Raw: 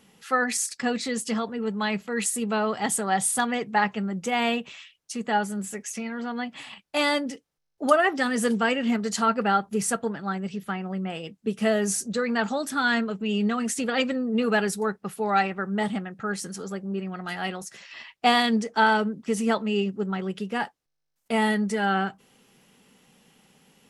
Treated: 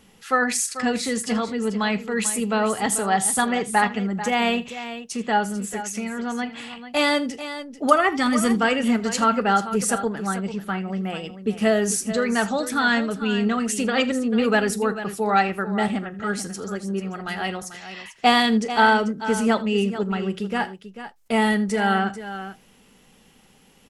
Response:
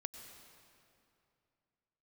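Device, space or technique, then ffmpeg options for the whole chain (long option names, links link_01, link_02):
low shelf boost with a cut just above: -filter_complex "[0:a]lowshelf=frequency=72:gain=9.5,lowshelf=frequency=86:gain=6.5,equalizer=frequency=150:width_type=o:width=0.73:gain=-5,asettb=1/sr,asplit=3[link_01][link_02][link_03];[link_01]atrim=end=7.924[link_04];[link_02]atrim=start=7.92:end=8.55,asetpts=PTS-STARTPTS,afade=type=in:duration=0.004:curve=qsin,afade=type=out:start_time=0.626:duration=0.004:curve=qsin,aecho=1:1:0.9:0.51,atrim=end_sample=27783[link_05];[link_03]atrim=start=8.546[link_06];[link_04][link_05]acrossfade=duration=0.004:curve1=hsin:curve2=qsin[link_07];[link_07][link_06]acrossfade=duration=0.004:curve1=qsin:curve2=hsin,aecho=1:1:41|80|441:0.119|0.119|0.251,volume=3dB"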